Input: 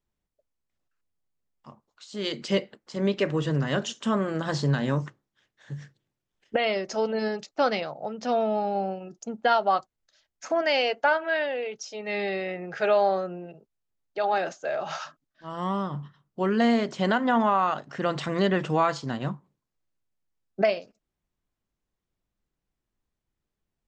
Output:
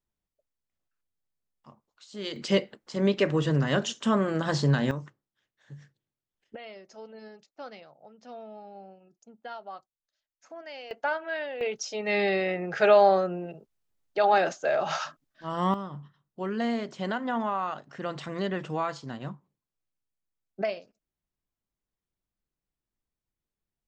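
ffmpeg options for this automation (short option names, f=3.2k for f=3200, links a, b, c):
-af "asetnsamples=n=441:p=0,asendcmd='2.36 volume volume 1dB;4.91 volume volume -9dB;6.55 volume volume -18.5dB;10.91 volume volume -6.5dB;11.61 volume volume 3.5dB;15.74 volume volume -7dB',volume=-5dB"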